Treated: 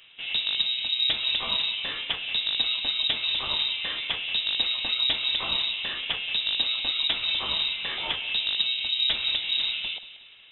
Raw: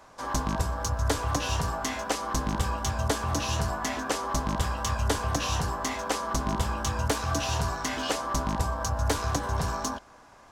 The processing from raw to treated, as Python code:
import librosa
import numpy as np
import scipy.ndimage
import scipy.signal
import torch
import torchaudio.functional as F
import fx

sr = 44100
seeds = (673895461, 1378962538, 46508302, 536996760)

y = fx.echo_feedback(x, sr, ms=182, feedback_pct=47, wet_db=-15.5)
y = fx.freq_invert(y, sr, carrier_hz=3800)